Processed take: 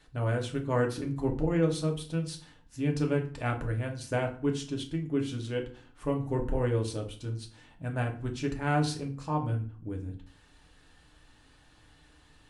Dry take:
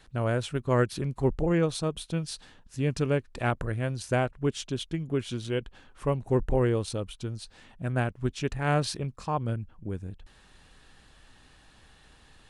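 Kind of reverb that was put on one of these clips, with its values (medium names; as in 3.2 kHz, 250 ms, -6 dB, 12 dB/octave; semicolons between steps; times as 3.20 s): FDN reverb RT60 0.43 s, low-frequency decay 1.4×, high-frequency decay 0.75×, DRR 1.5 dB; trim -5.5 dB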